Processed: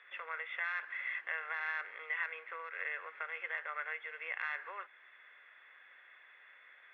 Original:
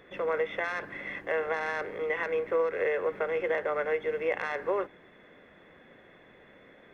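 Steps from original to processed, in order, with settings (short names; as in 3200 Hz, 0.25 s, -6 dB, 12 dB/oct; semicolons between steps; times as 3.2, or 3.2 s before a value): compressor 1.5:1, threshold -37 dBFS, peak gain reduction 5 dB; Butterworth band-pass 2000 Hz, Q 1; gain +1 dB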